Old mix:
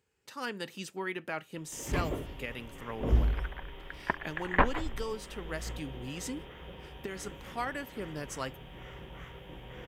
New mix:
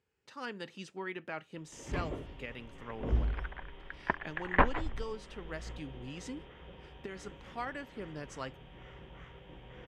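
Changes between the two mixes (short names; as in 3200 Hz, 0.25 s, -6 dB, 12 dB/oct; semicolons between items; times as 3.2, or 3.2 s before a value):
speech -3.5 dB; first sound -4.5 dB; master: add air absorption 81 m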